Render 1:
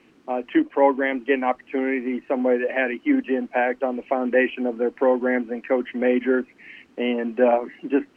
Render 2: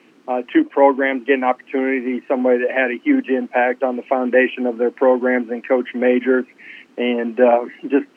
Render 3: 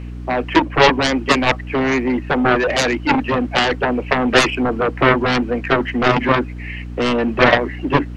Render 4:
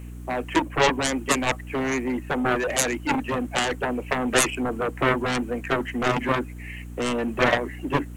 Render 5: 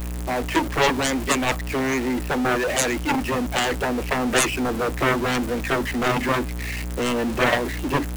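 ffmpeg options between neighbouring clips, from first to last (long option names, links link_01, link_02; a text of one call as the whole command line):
ffmpeg -i in.wav -af "highpass=190,volume=5dB" out.wav
ffmpeg -i in.wav -af "aeval=exprs='val(0)+0.02*(sin(2*PI*60*n/s)+sin(2*PI*2*60*n/s)/2+sin(2*PI*3*60*n/s)/3+sin(2*PI*4*60*n/s)/4+sin(2*PI*5*60*n/s)/5)':channel_layout=same,aeval=exprs='0.891*(cos(1*acos(clip(val(0)/0.891,-1,1)))-cos(1*PI/2))+0.447*(cos(7*acos(clip(val(0)/0.891,-1,1)))-cos(7*PI/2))':channel_layout=same,volume=-2dB" out.wav
ffmpeg -i in.wav -af "aexciter=amount=12:drive=2.9:freq=7000,volume=-8dB" out.wav
ffmpeg -i in.wav -af "aeval=exprs='val(0)+0.5*0.0596*sgn(val(0))':channel_layout=same,volume=-1dB" out.wav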